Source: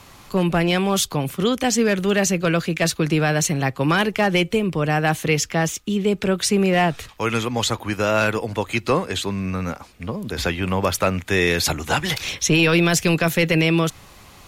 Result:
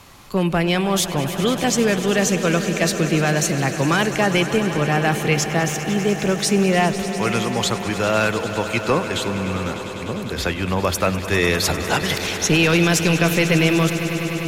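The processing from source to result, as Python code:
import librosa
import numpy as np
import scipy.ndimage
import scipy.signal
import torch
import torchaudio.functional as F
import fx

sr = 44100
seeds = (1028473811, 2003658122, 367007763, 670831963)

y = fx.echo_swell(x, sr, ms=100, loudest=5, wet_db=-15.0)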